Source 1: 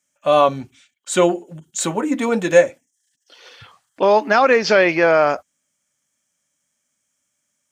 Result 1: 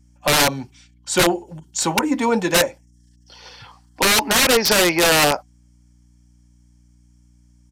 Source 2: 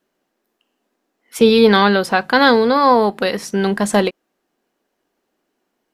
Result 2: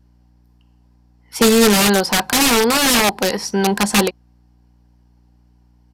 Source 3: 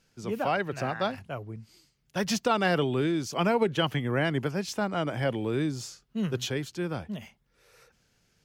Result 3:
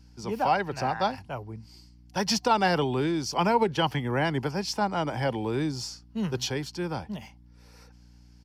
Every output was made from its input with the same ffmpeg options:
-filter_complex "[0:a]superequalizer=9b=2.51:14b=2.24,acrossover=split=380[a][b];[b]aeval=exprs='(mod(3.16*val(0)+1,2)-1)/3.16':c=same[c];[a][c]amix=inputs=2:normalize=0,aeval=exprs='val(0)+0.00251*(sin(2*PI*60*n/s)+sin(2*PI*2*60*n/s)/2+sin(2*PI*3*60*n/s)/3+sin(2*PI*4*60*n/s)/4+sin(2*PI*5*60*n/s)/5)':c=same,aresample=32000,aresample=44100"

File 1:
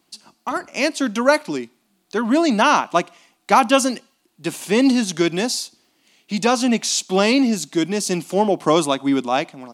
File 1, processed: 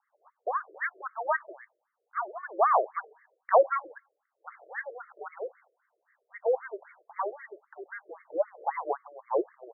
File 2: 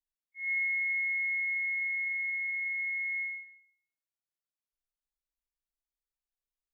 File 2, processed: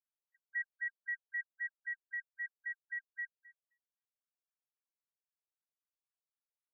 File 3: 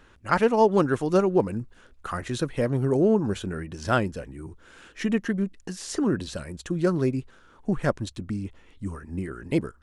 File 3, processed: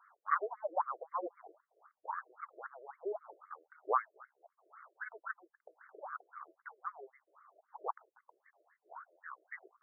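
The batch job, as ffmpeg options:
-af "highpass=f=210:t=q:w=0.5412,highpass=f=210:t=q:w=1.307,lowpass=f=2.3k:t=q:w=0.5176,lowpass=f=2.3k:t=q:w=0.7071,lowpass=f=2.3k:t=q:w=1.932,afreqshift=-250,afftfilt=real='re*between(b*sr/1024,460*pow(1600/460,0.5+0.5*sin(2*PI*3.8*pts/sr))/1.41,460*pow(1600/460,0.5+0.5*sin(2*PI*3.8*pts/sr))*1.41)':imag='im*between(b*sr/1024,460*pow(1600/460,0.5+0.5*sin(2*PI*3.8*pts/sr))/1.41,460*pow(1600/460,0.5+0.5*sin(2*PI*3.8*pts/sr))*1.41)':win_size=1024:overlap=0.75,volume=-2.5dB"

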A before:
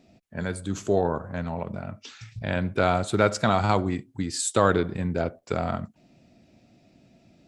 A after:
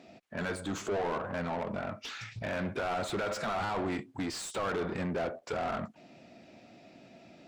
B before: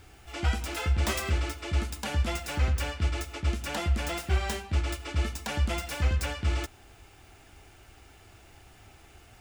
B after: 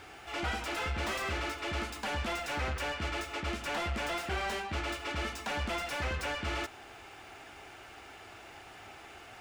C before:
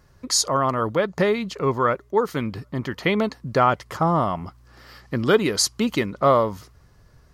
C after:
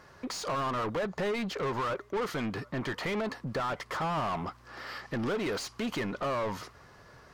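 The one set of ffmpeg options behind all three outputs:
-filter_complex "[0:a]alimiter=limit=-16dB:level=0:latency=1:release=70,asplit=2[a][b];[b]highpass=f=720:p=1,volume=26dB,asoftclip=type=tanh:threshold=-16dB[c];[a][c]amix=inputs=2:normalize=0,lowpass=f=2.1k:p=1,volume=-6dB,volume=-9dB"

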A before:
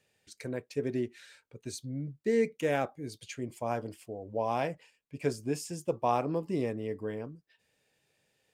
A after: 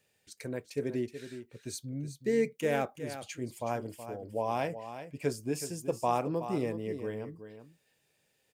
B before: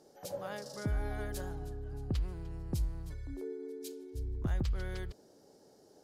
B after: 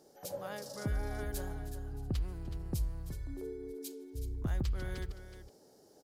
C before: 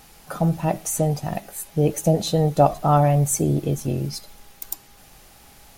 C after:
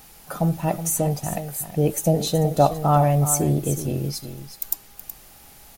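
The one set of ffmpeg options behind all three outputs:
-af "highshelf=f=11k:g=9.5,aecho=1:1:372:0.282,volume=-1dB"

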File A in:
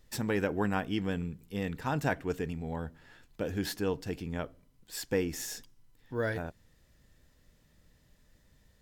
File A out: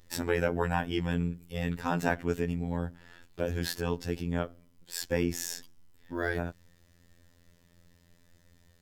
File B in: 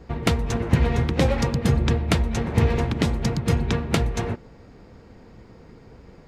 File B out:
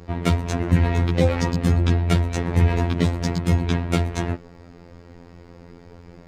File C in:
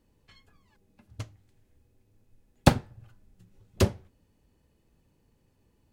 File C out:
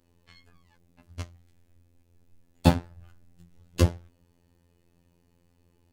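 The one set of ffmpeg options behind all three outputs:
-af "afftfilt=real='hypot(re,im)*cos(PI*b)':imag='0':win_size=2048:overlap=0.75,acontrast=78,volume=-1dB"

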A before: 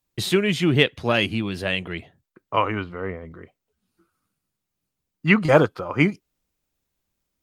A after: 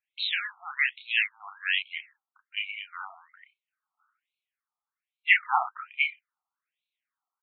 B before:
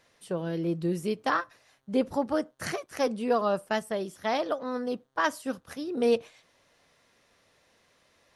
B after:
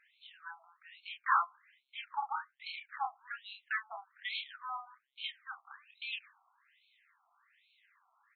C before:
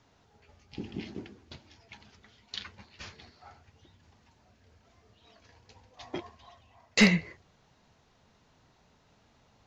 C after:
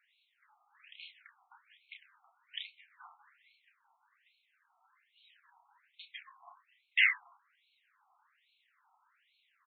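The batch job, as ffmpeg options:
-filter_complex "[0:a]asplit=2[a][b];[b]adelay=30,volume=-5dB[c];[a][c]amix=inputs=2:normalize=0,afftfilt=real='re*between(b*sr/1024,960*pow(3100/960,0.5+0.5*sin(2*PI*1.2*pts/sr))/1.41,960*pow(3100/960,0.5+0.5*sin(2*PI*1.2*pts/sr))*1.41)':imag='im*between(b*sr/1024,960*pow(3100/960,0.5+0.5*sin(2*PI*1.2*pts/sr))/1.41,960*pow(3100/960,0.5+0.5*sin(2*PI*1.2*pts/sr))*1.41)':win_size=1024:overlap=0.75"

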